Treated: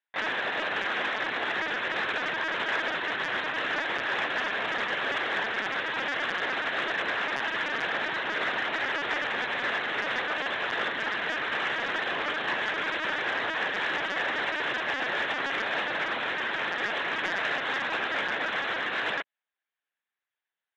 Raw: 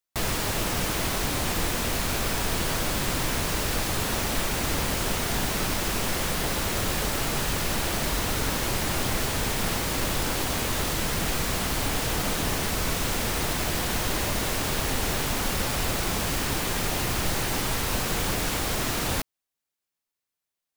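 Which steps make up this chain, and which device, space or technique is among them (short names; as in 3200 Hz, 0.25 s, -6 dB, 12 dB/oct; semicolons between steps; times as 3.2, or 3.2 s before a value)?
talking toy (LPC vocoder at 8 kHz pitch kept; HPF 430 Hz 12 dB/oct; bell 1700 Hz +10 dB 0.44 oct; soft clip -19 dBFS, distortion -20 dB)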